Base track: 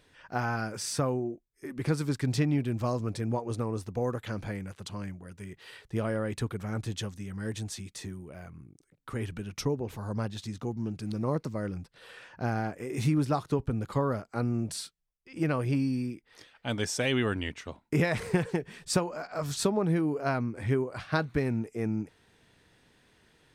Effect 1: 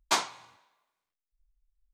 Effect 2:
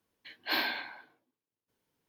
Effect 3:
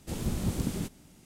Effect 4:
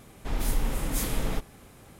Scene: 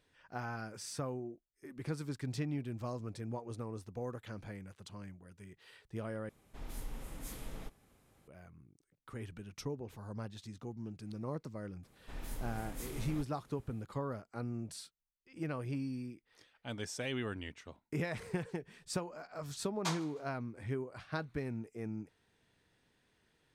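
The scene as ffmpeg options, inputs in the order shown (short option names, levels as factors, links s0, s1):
-filter_complex "[4:a]asplit=2[s0][s1];[0:a]volume=0.299[s2];[s0]aresample=32000,aresample=44100[s3];[1:a]aecho=1:1:154|308:0.0631|0.024[s4];[s2]asplit=2[s5][s6];[s5]atrim=end=6.294[s7];[s3]atrim=end=1.99,asetpts=PTS-STARTPTS,volume=0.15[s8];[s6]atrim=start=8.276[s9];[s1]atrim=end=1.99,asetpts=PTS-STARTPTS,volume=0.168,afade=t=in:d=0.004:c=hsin,afade=t=out:st=1.986:d=0.004:c=hsin,adelay=11830[s10];[s4]atrim=end=1.93,asetpts=PTS-STARTPTS,volume=0.266,afade=t=in:d=0.004:c=hsin,afade=t=out:st=1.926:d=0.004:c=hsin,adelay=19740[s11];[s7][s8]acrossfade=d=0.004:c1=hsin:c2=hsin[s12];[s12][s9]acrossfade=d=0.004:c1=hsin:c2=hsin[s13];[s13][s10][s11]amix=inputs=3:normalize=0"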